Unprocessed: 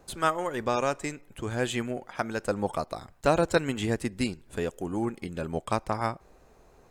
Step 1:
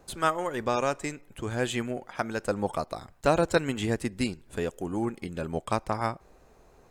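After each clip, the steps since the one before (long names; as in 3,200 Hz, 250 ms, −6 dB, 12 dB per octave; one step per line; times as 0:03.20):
no processing that can be heard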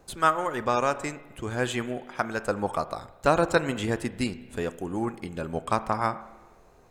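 spring reverb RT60 1.4 s, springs 32/41 ms, chirp 75 ms, DRR 13.5 dB
dynamic equaliser 1,200 Hz, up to +5 dB, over −40 dBFS, Q 1.3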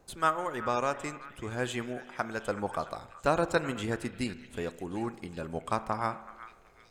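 echo through a band-pass that steps 376 ms, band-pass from 1,700 Hz, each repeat 0.7 octaves, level −11 dB
level −5 dB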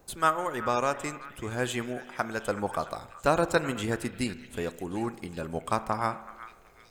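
high-shelf EQ 12,000 Hz +12 dB
level +2.5 dB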